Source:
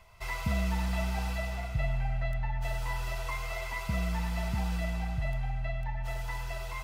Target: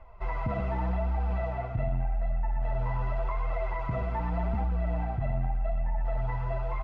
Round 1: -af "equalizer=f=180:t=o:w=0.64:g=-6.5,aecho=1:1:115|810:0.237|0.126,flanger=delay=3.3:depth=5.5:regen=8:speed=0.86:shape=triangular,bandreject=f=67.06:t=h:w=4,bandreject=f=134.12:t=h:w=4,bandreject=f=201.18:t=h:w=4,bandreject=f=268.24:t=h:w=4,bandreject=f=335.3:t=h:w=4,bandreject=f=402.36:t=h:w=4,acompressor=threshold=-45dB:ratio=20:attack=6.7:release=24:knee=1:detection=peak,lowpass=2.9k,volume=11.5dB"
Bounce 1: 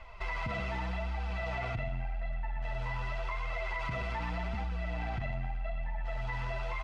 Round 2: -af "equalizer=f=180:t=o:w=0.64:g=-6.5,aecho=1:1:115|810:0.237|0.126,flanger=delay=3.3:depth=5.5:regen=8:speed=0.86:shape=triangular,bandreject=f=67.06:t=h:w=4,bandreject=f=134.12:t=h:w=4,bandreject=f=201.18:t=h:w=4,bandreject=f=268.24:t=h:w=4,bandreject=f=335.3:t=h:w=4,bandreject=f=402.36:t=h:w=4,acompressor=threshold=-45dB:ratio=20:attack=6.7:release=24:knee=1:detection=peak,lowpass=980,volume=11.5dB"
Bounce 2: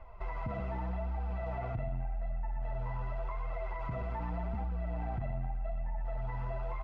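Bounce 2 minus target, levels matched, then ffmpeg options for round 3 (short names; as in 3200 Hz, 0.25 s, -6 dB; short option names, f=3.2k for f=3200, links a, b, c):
compressor: peak gain reduction +7 dB
-af "equalizer=f=180:t=o:w=0.64:g=-6.5,aecho=1:1:115|810:0.237|0.126,flanger=delay=3.3:depth=5.5:regen=8:speed=0.86:shape=triangular,bandreject=f=67.06:t=h:w=4,bandreject=f=134.12:t=h:w=4,bandreject=f=201.18:t=h:w=4,bandreject=f=268.24:t=h:w=4,bandreject=f=335.3:t=h:w=4,bandreject=f=402.36:t=h:w=4,acompressor=threshold=-37.5dB:ratio=20:attack=6.7:release=24:knee=1:detection=peak,lowpass=980,volume=11.5dB"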